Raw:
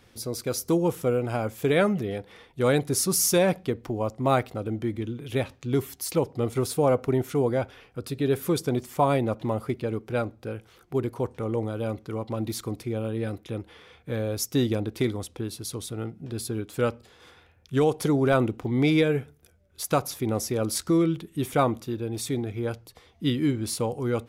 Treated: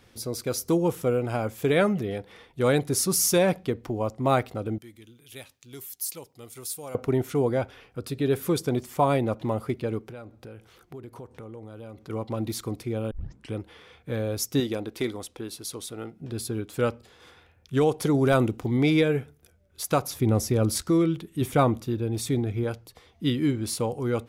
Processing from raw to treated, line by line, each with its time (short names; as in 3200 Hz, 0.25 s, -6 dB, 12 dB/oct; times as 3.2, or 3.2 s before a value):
4.78–6.95 pre-emphasis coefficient 0.9
10.09–12.1 compressor 4:1, threshold -40 dBFS
13.11 tape start 0.43 s
14.6–16.21 bell 100 Hz -10 dB 2.3 oct
18.14–18.77 tone controls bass +2 dB, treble +6 dB
20.14–20.82 low shelf 180 Hz +11 dB
21.41–22.64 low shelf 210 Hz +6.5 dB